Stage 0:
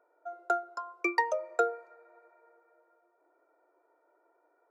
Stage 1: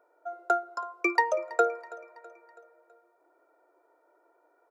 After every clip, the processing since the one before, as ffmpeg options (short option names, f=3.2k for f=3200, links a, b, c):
-af "aecho=1:1:327|654|981|1308:0.1|0.051|0.026|0.0133,volume=3.5dB"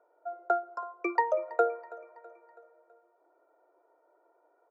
-af "bandpass=f=630:t=q:w=0.78:csg=0"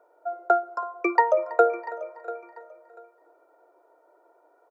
-af "aecho=1:1:691|1382:0.15|0.0344,volume=7dB"